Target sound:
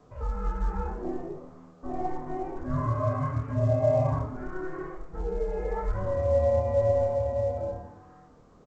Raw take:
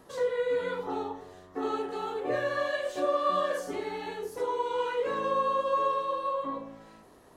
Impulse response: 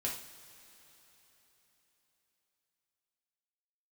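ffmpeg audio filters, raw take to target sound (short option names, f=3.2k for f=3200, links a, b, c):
-filter_complex "[0:a]highpass=f=160:p=1,asetrate=37485,aresample=44100,highpass=f=390:t=q:w=0.5412,highpass=f=390:t=q:w=1.307,lowpass=f=2k:t=q:w=0.5176,lowpass=f=2k:t=q:w=0.7071,lowpass=f=2k:t=q:w=1.932,afreqshift=-370,asplit=2[a][b];[b]adelay=27,volume=-3dB[c];[a][c]amix=inputs=2:normalize=0,asplit=4[d][e][f][g];[e]adelay=112,afreqshift=150,volume=-14.5dB[h];[f]adelay=224,afreqshift=300,volume=-24.1dB[i];[g]adelay=336,afreqshift=450,volume=-33.8dB[j];[d][h][i][j]amix=inputs=4:normalize=0,volume=1.5dB" -ar 16000 -c:a pcm_alaw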